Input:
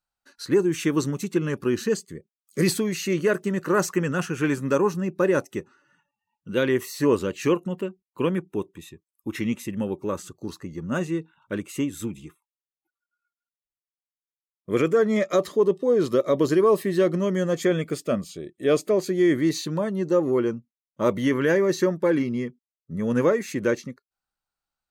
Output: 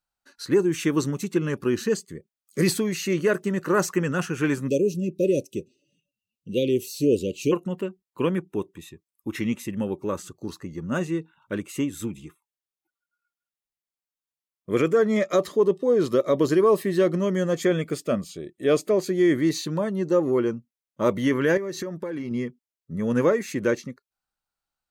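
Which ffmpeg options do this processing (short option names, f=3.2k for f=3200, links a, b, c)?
-filter_complex "[0:a]asplit=3[a][b][c];[a]afade=t=out:st=4.67:d=0.02[d];[b]asuperstop=centerf=1200:order=12:qfactor=0.62,afade=t=in:st=4.67:d=0.02,afade=t=out:st=7.51:d=0.02[e];[c]afade=t=in:st=7.51:d=0.02[f];[d][e][f]amix=inputs=3:normalize=0,asettb=1/sr,asplit=3[g][h][i];[g]atrim=end=21.574[j];[h]atrim=start=21.57:end=22.31,asetpts=PTS-STARTPTS,afade=t=in:d=0.004:c=qsin,afade=t=out:st=0.736:d=0.004:c=qsin,acompressor=threshold=-27dB:ratio=12:attack=3.2:release=140:knee=1:detection=peak[k];[i]atrim=start=22.306[l];[j][k]acrossfade=d=0.004:c1=hsin:c2=qsin[m];[m][l]acrossfade=d=0.004:c1=qsin:c2=hsin"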